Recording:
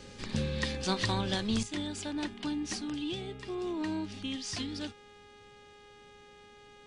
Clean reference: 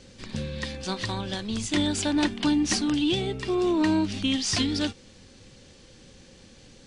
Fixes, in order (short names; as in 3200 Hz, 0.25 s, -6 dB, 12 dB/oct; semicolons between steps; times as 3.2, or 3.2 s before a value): de-hum 412.5 Hz, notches 9; gain correction +11.5 dB, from 1.63